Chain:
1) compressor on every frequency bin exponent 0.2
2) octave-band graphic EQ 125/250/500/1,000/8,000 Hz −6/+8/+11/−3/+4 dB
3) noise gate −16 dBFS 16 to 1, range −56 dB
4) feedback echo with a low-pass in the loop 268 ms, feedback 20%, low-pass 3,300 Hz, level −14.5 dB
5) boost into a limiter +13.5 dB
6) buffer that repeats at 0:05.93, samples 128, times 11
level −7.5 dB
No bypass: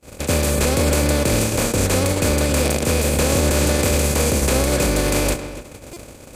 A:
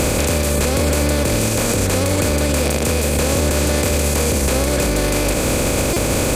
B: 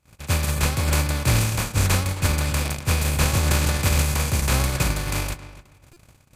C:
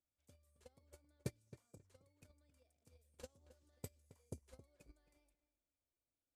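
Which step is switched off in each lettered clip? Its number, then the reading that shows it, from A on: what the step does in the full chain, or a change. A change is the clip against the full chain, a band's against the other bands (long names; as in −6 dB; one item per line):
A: 3, change in momentary loudness spread −9 LU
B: 2, 500 Hz band −9.0 dB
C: 1, change in crest factor +23.0 dB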